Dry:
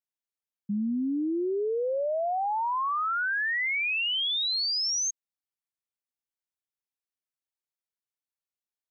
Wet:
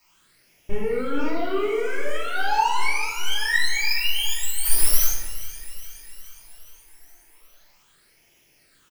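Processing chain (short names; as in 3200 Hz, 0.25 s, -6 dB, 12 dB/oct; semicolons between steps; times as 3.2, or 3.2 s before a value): minimum comb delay 2.2 ms; sample leveller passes 5; band noise 310–4700 Hz -64 dBFS; requantised 10-bit, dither triangular; phaser stages 8, 0.39 Hz, lowest notch 150–1300 Hz; 4.64–5.04 sample leveller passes 5; notch 3600 Hz, Q 18; feedback echo 0.416 s, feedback 60%, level -16 dB; reverb RT60 1.0 s, pre-delay 3 ms, DRR -6.5 dB; gain -5 dB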